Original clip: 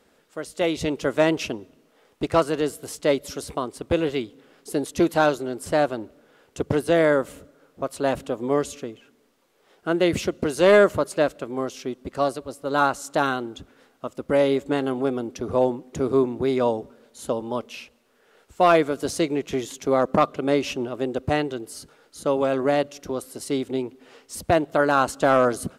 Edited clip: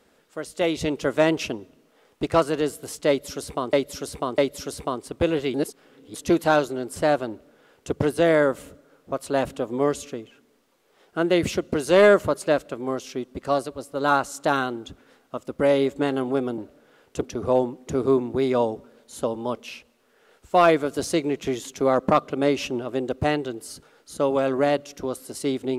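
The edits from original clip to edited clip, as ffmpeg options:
-filter_complex "[0:a]asplit=7[s0][s1][s2][s3][s4][s5][s6];[s0]atrim=end=3.732[s7];[s1]atrim=start=3.078:end=3.732[s8];[s2]atrim=start=3.078:end=4.242[s9];[s3]atrim=start=4.238:end=4.842,asetpts=PTS-STARTPTS,areverse[s10];[s4]atrim=start=4.838:end=15.282[s11];[s5]atrim=start=5.988:end=6.632[s12];[s6]atrim=start=15.278[s13];[s7][s8]acrossfade=d=0.004:c1=hsin:c2=hsin[s14];[s14][s9]acrossfade=d=0.004:c1=hsin:c2=hsin[s15];[s15][s10]acrossfade=d=0.004:c1=hsin:c2=hsin[s16];[s16][s11]acrossfade=d=0.004:c1=hsin:c2=hsin[s17];[s17][s12]acrossfade=d=0.004:c1=hsin:c2=hsin[s18];[s18][s13]acrossfade=d=0.004:c1=hsin:c2=hsin"

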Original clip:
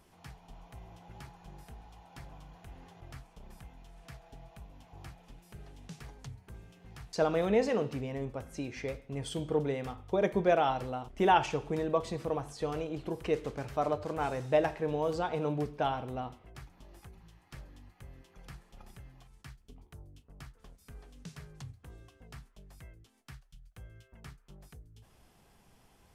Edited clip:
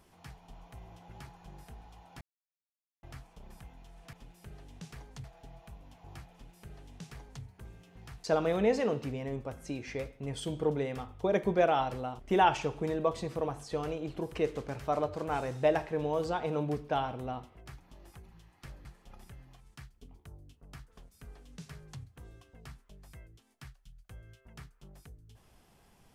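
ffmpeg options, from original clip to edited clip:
-filter_complex "[0:a]asplit=6[s0][s1][s2][s3][s4][s5];[s0]atrim=end=2.21,asetpts=PTS-STARTPTS,afade=t=out:st=2.206:d=0.004:c=hsin[s6];[s1]atrim=start=2.21:end=3.03,asetpts=PTS-STARTPTS,volume=0[s7];[s2]atrim=start=3.03:end=4.132,asetpts=PTS-STARTPTS,afade=t=in:d=0.004:c=hsin[s8];[s3]atrim=start=5.208:end=6.322[s9];[s4]atrim=start=4.128:end=17.742[s10];[s5]atrim=start=18.518[s11];[s6][s7][s8]concat=n=3:v=0:a=1[s12];[s12][s9]acrossfade=d=0.004:c1=hsin:c2=hsin[s13];[s13][s10]acrossfade=d=0.004:c1=hsin:c2=hsin[s14];[s14][s11]acrossfade=d=0.004:c1=hsin:c2=hsin"

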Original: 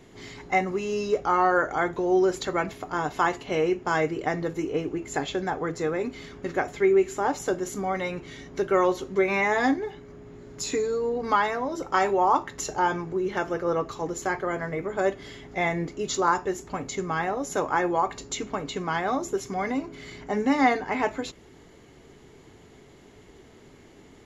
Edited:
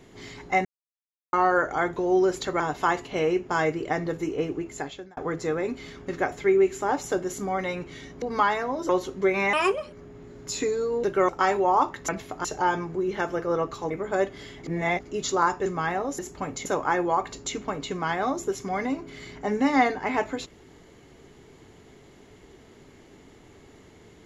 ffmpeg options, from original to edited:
-filter_complex "[0:a]asplit=19[s0][s1][s2][s3][s4][s5][s6][s7][s8][s9][s10][s11][s12][s13][s14][s15][s16][s17][s18];[s0]atrim=end=0.65,asetpts=PTS-STARTPTS,afade=t=out:st=0.646:d=0.004:c=hsin[s19];[s1]atrim=start=0.65:end=1.33,asetpts=PTS-STARTPTS,volume=0[s20];[s2]atrim=start=1.33:end=2.602,asetpts=PTS-STARTPTS,afade=t=in:d=0.004:c=hsin[s21];[s3]atrim=start=2.958:end=5.53,asetpts=PTS-STARTPTS,afade=t=out:st=1.952:d=0.62[s22];[s4]atrim=start=5.53:end=8.582,asetpts=PTS-STARTPTS,afade=t=in:d=0.004:c=hsin[s23];[s5]atrim=start=11.148:end=11.822[s24];[s6]atrim=start=8.828:end=9.474[s25];[s7]atrim=start=9.47:end=10.04,asetpts=PTS-STARTPTS,asetrate=63504,aresample=44100,atrim=end_sample=17456,asetpts=PTS-STARTPTS[s26];[s8]atrim=start=10.036:end=11.152[s27];[s9]atrim=start=8.578:end=8.832[s28];[s10]atrim=start=11.818:end=12.622[s29];[s11]atrim=start=2.598:end=2.962[s30];[s12]atrim=start=12.618:end=14.082[s31];[s13]atrim=start=14.758:end=15.492[s32];[s14]atrim=start=15.488:end=15.912,asetpts=PTS-STARTPTS,areverse[s33];[s15]atrim=start=15.908:end=16.512[s34];[s16]atrim=start=16.978:end=17.512[s35];[s17]atrim=start=16.508:end=16.982[s36];[s18]atrim=start=17.508[s37];[s19][s20][s21]concat=n=3:v=0:a=1[s38];[s22][s23]concat=n=2:v=0:a=1[s39];[s38][s39]acrossfade=d=0.004:c1=hsin:c2=hsin[s40];[s40][s24]acrossfade=d=0.004:c1=hsin:c2=hsin[s41];[s41][s25]acrossfade=d=0.004:c1=hsin:c2=hsin[s42];[s42][s26]acrossfade=d=0.004:c1=hsin:c2=hsin[s43];[s43][s27]acrossfade=d=0.004:c1=hsin:c2=hsin[s44];[s44][s28]acrossfade=d=0.004:c1=hsin:c2=hsin[s45];[s45][s29]acrossfade=d=0.004:c1=hsin:c2=hsin[s46];[s46][s30]acrossfade=d=0.004:c1=hsin:c2=hsin[s47];[s47][s31]acrossfade=d=0.004:c1=hsin:c2=hsin[s48];[s48][s32]acrossfade=d=0.004:c1=hsin:c2=hsin[s49];[s49][s33]acrossfade=d=0.004:c1=hsin:c2=hsin[s50];[s50][s34]acrossfade=d=0.004:c1=hsin:c2=hsin[s51];[s51][s35]acrossfade=d=0.004:c1=hsin:c2=hsin[s52];[s52][s36]acrossfade=d=0.004:c1=hsin:c2=hsin[s53];[s53][s37]acrossfade=d=0.004:c1=hsin:c2=hsin"

